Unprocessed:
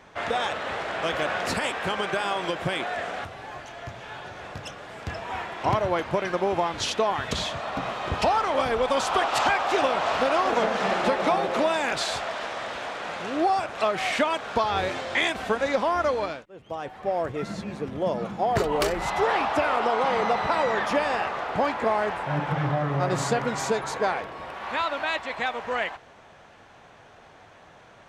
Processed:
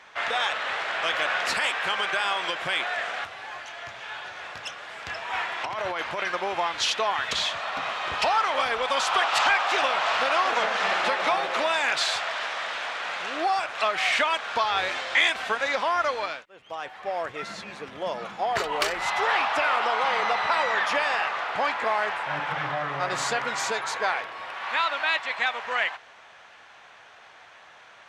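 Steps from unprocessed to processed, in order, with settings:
tilt shelving filter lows −8 dB, about 870 Hz
0:05.33–0:06.28: compressor whose output falls as the input rises −28 dBFS, ratio −1
mid-hump overdrive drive 6 dB, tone 2,800 Hz, clips at −6 dBFS
level −1.5 dB

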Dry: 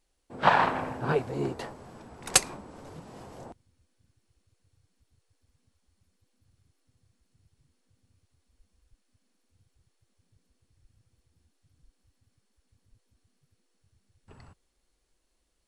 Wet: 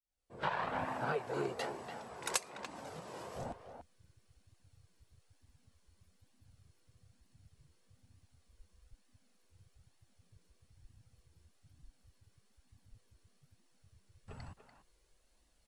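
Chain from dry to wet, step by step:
fade in at the beginning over 1.18 s
0:00.85–0:03.36: high-pass filter 400 Hz 6 dB per octave
downward compressor 5 to 1, threshold −36 dBFS, peak gain reduction 18.5 dB
flanger 1.1 Hz, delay 1 ms, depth 1.1 ms, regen −38%
far-end echo of a speakerphone 290 ms, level −8 dB
level +6 dB

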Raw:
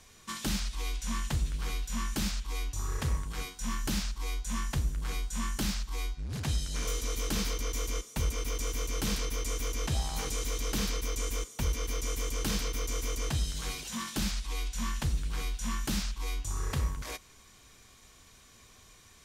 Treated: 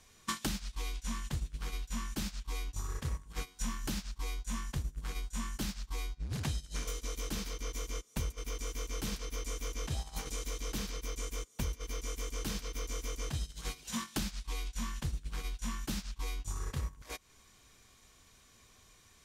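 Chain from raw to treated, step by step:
downward compressor 16 to 1, threshold −44 dBFS, peak gain reduction 19.5 dB
noise gate −46 dBFS, range −18 dB
level +13 dB

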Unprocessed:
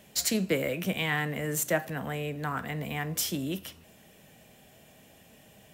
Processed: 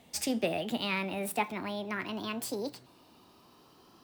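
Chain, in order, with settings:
gliding playback speed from 115% → 169%
high-shelf EQ 6,800 Hz −7.5 dB
level −2.5 dB

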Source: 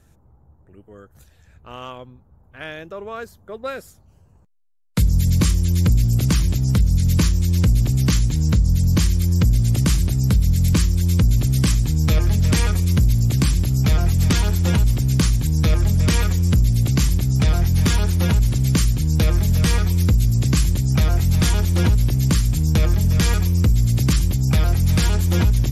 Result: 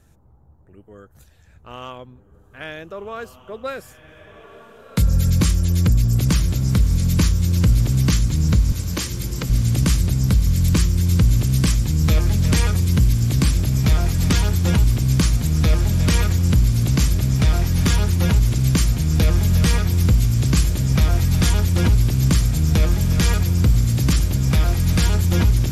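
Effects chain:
0:08.72–0:09.50: Bessel high-pass filter 350 Hz, order 8
feedback delay with all-pass diffusion 1,544 ms, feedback 61%, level −11 dB

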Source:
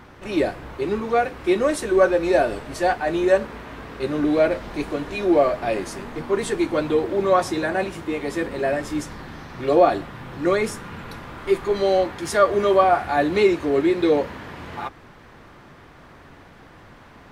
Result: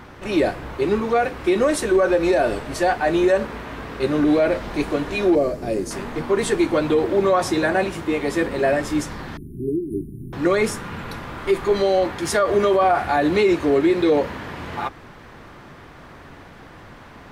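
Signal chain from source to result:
0:05.35–0:05.91: flat-topped bell 1,600 Hz −12.5 dB 2.9 octaves
brickwall limiter −13.5 dBFS, peak gain reduction 9 dB
0:09.37–0:10.33: linear-phase brick-wall band-stop 420–9,000 Hz
level +4 dB

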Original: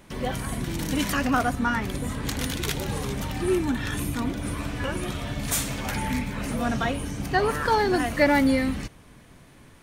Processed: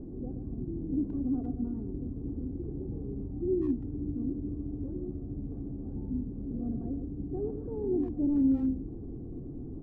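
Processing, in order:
linear delta modulator 16 kbit/s, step −28 dBFS
reversed playback
upward compression, threshold −29 dBFS
reversed playback
transistor ladder low-pass 360 Hz, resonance 40%
comb filter 2.6 ms, depth 40%
far-end echo of a speakerphone 120 ms, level −8 dB

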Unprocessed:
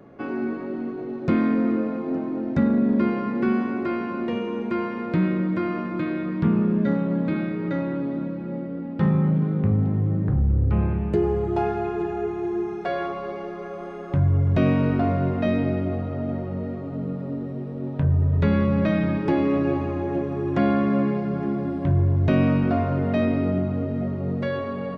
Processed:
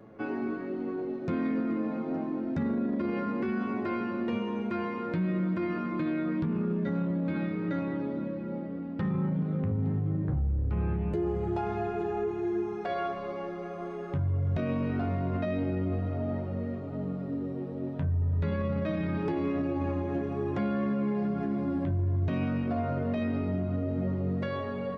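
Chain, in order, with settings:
flanger 0.24 Hz, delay 9 ms, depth 3.9 ms, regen +37%
brickwall limiter −22.5 dBFS, peak gain reduction 10 dB

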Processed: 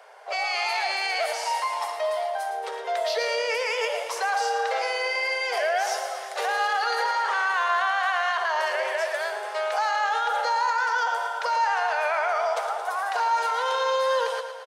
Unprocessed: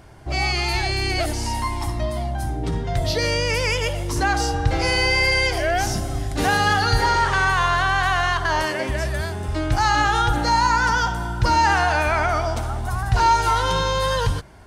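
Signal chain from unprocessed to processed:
Butterworth high-pass 440 Hz 96 dB per octave
high-shelf EQ 4,100 Hz −10 dB
brickwall limiter −21 dBFS, peak gain reduction 12 dB
repeating echo 112 ms, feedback 60%, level −9.5 dB
level +3 dB

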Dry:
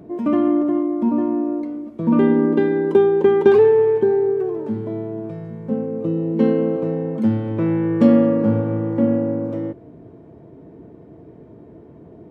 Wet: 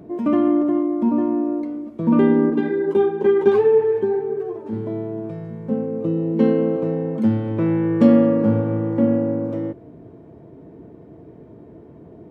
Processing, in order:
0:02.50–0:04.73: string-ensemble chorus

